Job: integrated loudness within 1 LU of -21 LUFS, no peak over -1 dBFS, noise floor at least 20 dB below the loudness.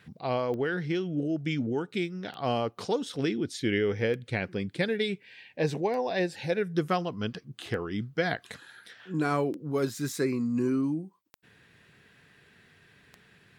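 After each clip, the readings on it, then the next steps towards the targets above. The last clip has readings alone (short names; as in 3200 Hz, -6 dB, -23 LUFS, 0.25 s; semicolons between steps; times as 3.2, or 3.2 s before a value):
clicks 8; loudness -30.5 LUFS; peak -14.0 dBFS; loudness target -21.0 LUFS
-> de-click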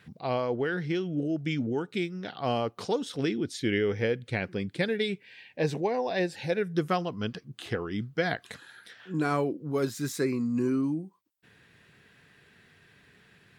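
clicks 0; loudness -30.5 LUFS; peak -14.0 dBFS; loudness target -21.0 LUFS
-> gain +9.5 dB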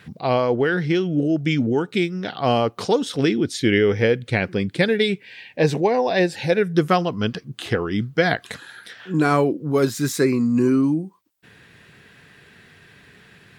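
loudness -21.0 LUFS; peak -4.5 dBFS; noise floor -53 dBFS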